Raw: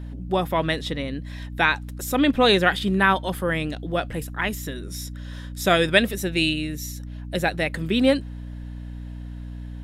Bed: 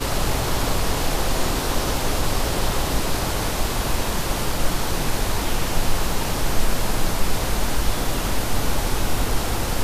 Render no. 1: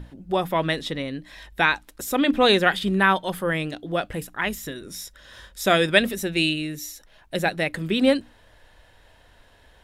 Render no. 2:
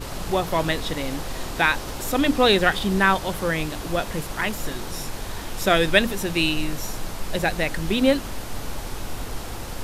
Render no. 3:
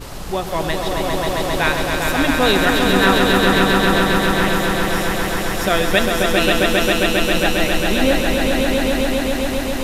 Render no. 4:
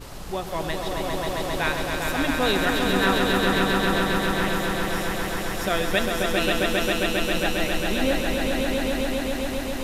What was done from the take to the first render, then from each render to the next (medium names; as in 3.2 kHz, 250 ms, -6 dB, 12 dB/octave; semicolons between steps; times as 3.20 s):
hum notches 60/120/180/240/300 Hz
add bed -9.5 dB
echo with a slow build-up 134 ms, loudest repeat 5, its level -4 dB
trim -7 dB